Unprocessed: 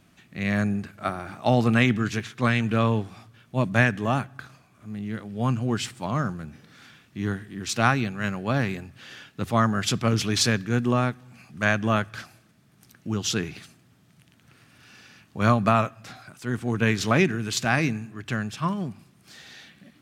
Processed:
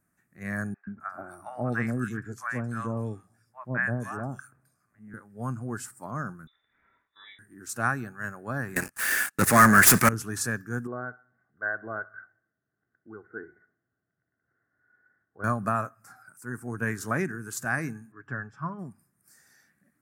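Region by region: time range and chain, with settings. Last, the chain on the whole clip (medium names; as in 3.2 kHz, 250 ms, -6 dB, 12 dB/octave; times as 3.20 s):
0.74–5.14 s: treble shelf 8.5 kHz -6 dB + three bands offset in time mids, lows, highs 130/260 ms, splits 840/3000 Hz
6.47–7.39 s: frequency inversion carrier 3.7 kHz + comb of notches 180 Hz
8.76–10.09 s: frequency weighting D + waveshaping leveller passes 5
10.87–15.44 s: rippled Chebyshev low-pass 2.1 kHz, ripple 9 dB + comb 2.7 ms, depth 35% + feedback delay 65 ms, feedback 57%, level -20 dB
18.12–18.79 s: low-pass 3 kHz + comb 7.1 ms, depth 33%
whole clip: spectral noise reduction 9 dB; FFT filter 890 Hz 0 dB, 1.7 kHz +7 dB, 3.2 kHz -19 dB, 9.2 kHz +11 dB; trim -8.5 dB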